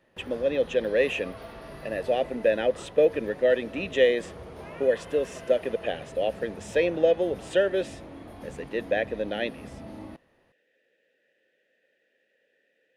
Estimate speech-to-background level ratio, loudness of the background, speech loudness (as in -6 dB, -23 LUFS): 16.5 dB, -43.0 LUFS, -26.5 LUFS